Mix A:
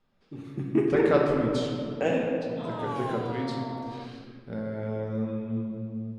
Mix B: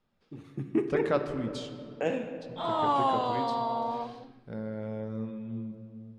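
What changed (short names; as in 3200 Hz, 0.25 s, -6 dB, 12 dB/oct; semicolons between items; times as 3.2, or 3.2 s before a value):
speech: send -11.0 dB; background +8.5 dB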